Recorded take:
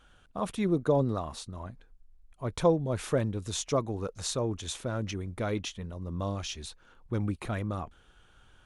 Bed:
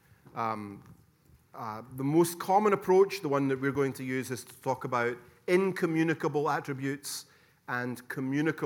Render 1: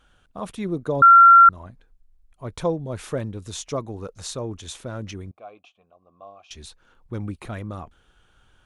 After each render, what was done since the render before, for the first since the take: 1.02–1.49 s: bleep 1.37 kHz -6.5 dBFS; 5.31–6.51 s: vowel filter a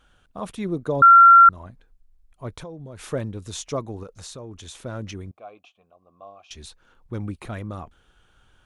2.57–3.04 s: compression, threshold -35 dBFS; 4.03–4.80 s: compression 2.5:1, threshold -38 dBFS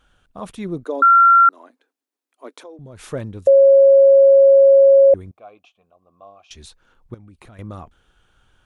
0.85–2.79 s: Chebyshev high-pass 260 Hz, order 5; 3.47–5.14 s: bleep 548 Hz -6.5 dBFS; 7.14–7.59 s: compression 16:1, threshold -40 dBFS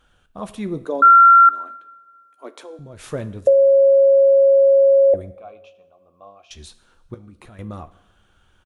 doubling 14 ms -13.5 dB; two-slope reverb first 0.78 s, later 2.5 s, from -18 dB, DRR 12.5 dB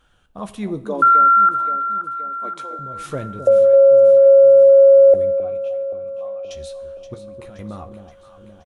doubling 15 ms -11 dB; echo whose repeats swap between lows and highs 262 ms, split 830 Hz, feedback 75%, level -8.5 dB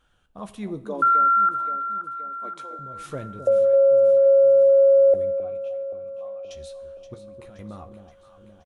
trim -6 dB

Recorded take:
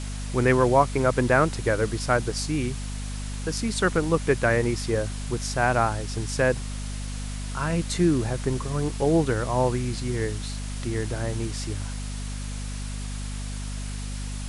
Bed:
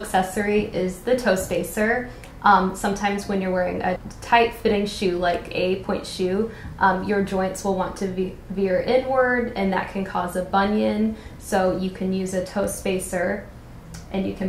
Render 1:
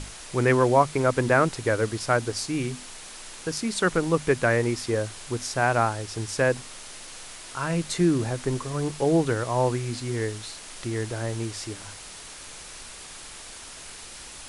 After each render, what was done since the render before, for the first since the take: hum notches 50/100/150/200/250 Hz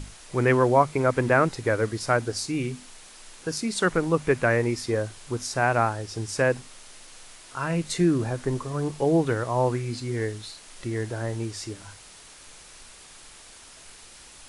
noise print and reduce 6 dB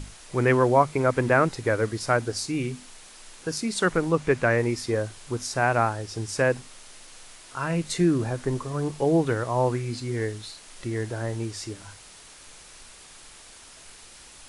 4.11–4.58 s: low-pass 9 kHz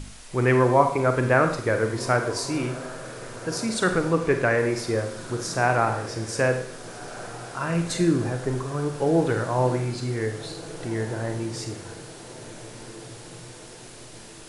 echo that smears into a reverb 1577 ms, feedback 59%, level -16 dB; Schroeder reverb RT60 0.66 s, combs from 32 ms, DRR 6 dB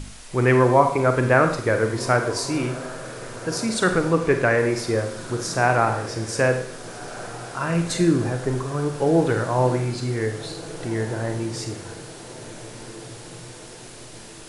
trim +2.5 dB; peak limiter -3 dBFS, peak gain reduction 1 dB

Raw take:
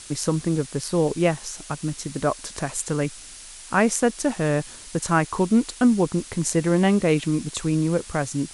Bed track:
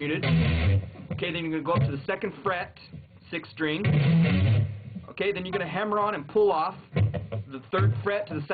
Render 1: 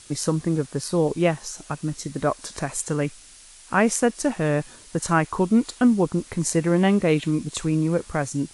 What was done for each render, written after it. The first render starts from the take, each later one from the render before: noise print and reduce 6 dB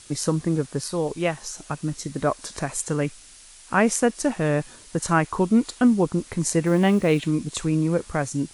0.87–1.38 s: peaking EQ 210 Hz -6 dB 2.9 oct; 6.66–7.27 s: block-companded coder 7-bit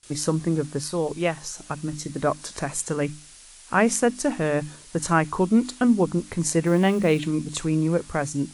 hum notches 50/100/150/200/250/300 Hz; gate with hold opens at -38 dBFS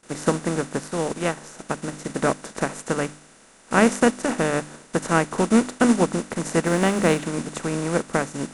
spectral levelling over time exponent 0.4; upward expansion 2.5:1, over -31 dBFS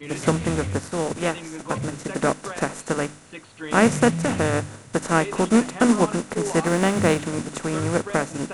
add bed track -7 dB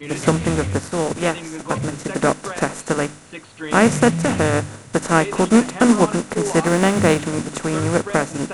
trim +4 dB; peak limiter -1 dBFS, peak gain reduction 2 dB

